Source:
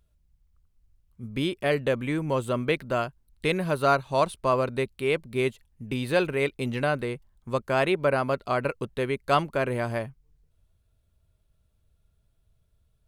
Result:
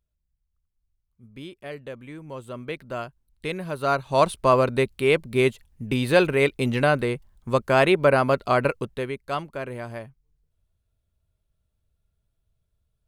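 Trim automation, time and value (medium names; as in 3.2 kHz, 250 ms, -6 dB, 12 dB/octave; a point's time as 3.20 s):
2.20 s -12 dB
3.03 s -4.5 dB
3.73 s -4.5 dB
4.27 s +5.5 dB
8.65 s +5.5 dB
9.29 s -6 dB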